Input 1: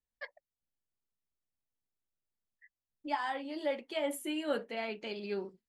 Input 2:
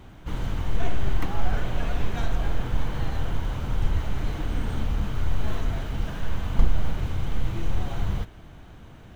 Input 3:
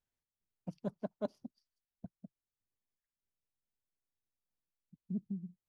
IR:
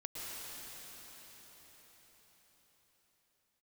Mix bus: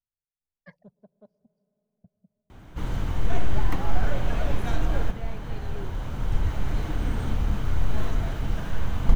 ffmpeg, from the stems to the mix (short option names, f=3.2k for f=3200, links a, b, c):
-filter_complex "[0:a]highshelf=f=2.9k:g=-11,adelay=450,volume=-5dB[a];[1:a]adelay=2500,volume=0dB,asplit=2[b][c];[c]volume=-15dB[d];[2:a]equalizer=f=280:w=2.1:g=-11.5,alimiter=level_in=9.5dB:limit=-24dB:level=0:latency=1:release=409,volume=-9.5dB,tiltshelf=f=720:g=7.5,volume=-12dB,asplit=3[e][f][g];[f]volume=-18dB[h];[g]apad=whole_len=514180[i];[b][i]sidechaincompress=threshold=-57dB:ratio=3:attack=25:release=1400[j];[3:a]atrim=start_sample=2205[k];[d][h]amix=inputs=2:normalize=0[l];[l][k]afir=irnorm=-1:irlink=0[m];[a][j][e][m]amix=inputs=4:normalize=0,equalizer=f=3.1k:w=1.5:g=-2.5"